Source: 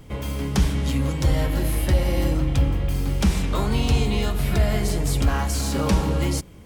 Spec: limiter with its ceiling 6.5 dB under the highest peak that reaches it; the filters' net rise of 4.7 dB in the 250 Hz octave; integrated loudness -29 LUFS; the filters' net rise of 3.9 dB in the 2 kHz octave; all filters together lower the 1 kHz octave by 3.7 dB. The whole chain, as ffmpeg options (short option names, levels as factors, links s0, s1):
-af "equalizer=f=250:t=o:g=6.5,equalizer=f=1000:t=o:g=-7,equalizer=f=2000:t=o:g=6.5,volume=0.501,alimiter=limit=0.119:level=0:latency=1"